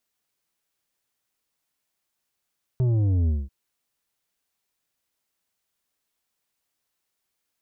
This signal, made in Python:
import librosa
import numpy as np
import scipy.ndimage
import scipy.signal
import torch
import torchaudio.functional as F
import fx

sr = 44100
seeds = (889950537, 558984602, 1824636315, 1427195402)

y = fx.sub_drop(sr, level_db=-19.5, start_hz=130.0, length_s=0.69, drive_db=8, fade_s=0.21, end_hz=65.0)